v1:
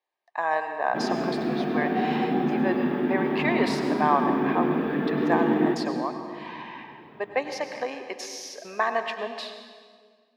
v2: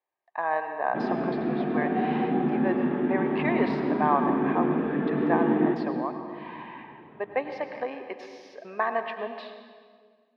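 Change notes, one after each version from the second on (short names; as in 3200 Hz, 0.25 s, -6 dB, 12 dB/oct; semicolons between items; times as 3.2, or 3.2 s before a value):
master: add air absorption 380 m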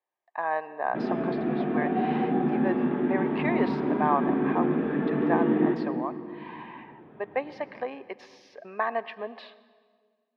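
speech: send -11.0 dB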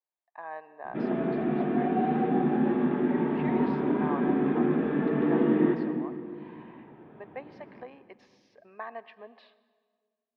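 speech -11.5 dB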